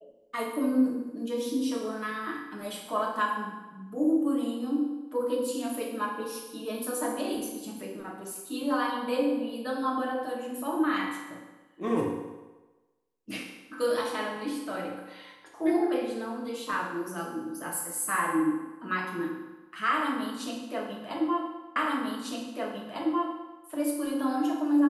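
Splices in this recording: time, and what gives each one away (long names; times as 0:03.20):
0:21.76: the same again, the last 1.85 s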